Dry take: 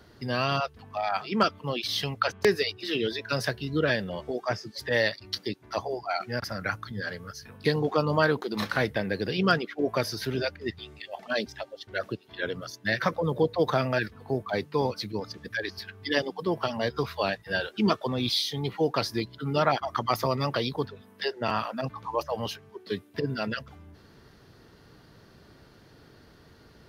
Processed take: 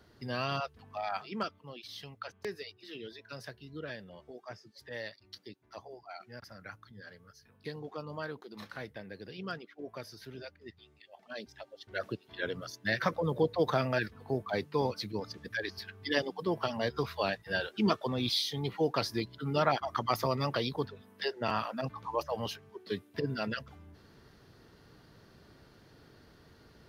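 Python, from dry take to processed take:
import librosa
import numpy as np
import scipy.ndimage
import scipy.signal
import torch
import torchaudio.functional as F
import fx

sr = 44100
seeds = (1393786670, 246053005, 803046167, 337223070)

y = fx.gain(x, sr, db=fx.line((1.13, -7.0), (1.68, -16.5), (11.2, -16.5), (12.05, -4.0)))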